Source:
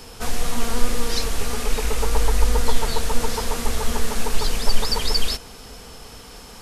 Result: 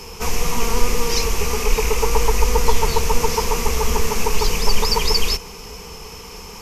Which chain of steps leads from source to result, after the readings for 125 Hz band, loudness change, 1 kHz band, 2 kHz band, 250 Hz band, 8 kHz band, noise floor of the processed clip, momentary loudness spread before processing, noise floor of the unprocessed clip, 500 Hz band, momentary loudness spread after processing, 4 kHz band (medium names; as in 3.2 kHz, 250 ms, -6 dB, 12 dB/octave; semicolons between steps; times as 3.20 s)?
+3.0 dB, +4.5 dB, +6.5 dB, +5.0 dB, +2.0 dB, +5.0 dB, -37 dBFS, 18 LU, -41 dBFS, +6.5 dB, 16 LU, +3.5 dB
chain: rippled EQ curve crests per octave 0.78, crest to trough 10 dB; trim +3.5 dB